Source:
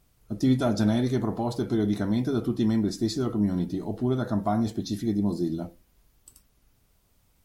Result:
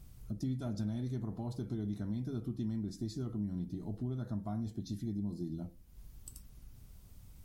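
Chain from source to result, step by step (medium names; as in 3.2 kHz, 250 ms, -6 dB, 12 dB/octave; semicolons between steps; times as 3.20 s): tone controls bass +13 dB, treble +4 dB; compression 2.5:1, threshold -46 dBFS, peak gain reduction 23.5 dB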